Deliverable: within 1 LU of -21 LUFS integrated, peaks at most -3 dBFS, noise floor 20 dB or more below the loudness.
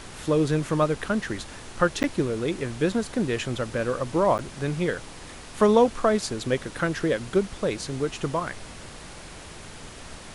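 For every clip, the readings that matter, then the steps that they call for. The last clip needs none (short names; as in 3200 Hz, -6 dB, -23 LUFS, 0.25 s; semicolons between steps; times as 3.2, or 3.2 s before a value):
dropouts 2; longest dropout 9.7 ms; noise floor -42 dBFS; noise floor target -46 dBFS; loudness -25.5 LUFS; peak -7.0 dBFS; loudness target -21.0 LUFS
-> interpolate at 2.03/4.38, 9.7 ms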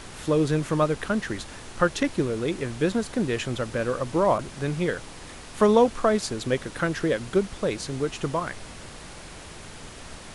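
dropouts 0; noise floor -42 dBFS; noise floor target -46 dBFS
-> noise print and reduce 6 dB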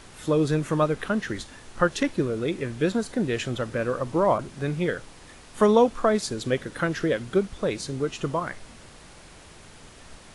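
noise floor -48 dBFS; loudness -26.0 LUFS; peak -7.0 dBFS; loudness target -21.0 LUFS
-> gain +5 dB; limiter -3 dBFS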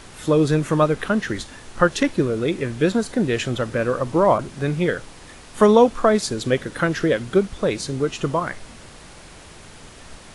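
loudness -21.0 LUFS; peak -3.0 dBFS; noise floor -43 dBFS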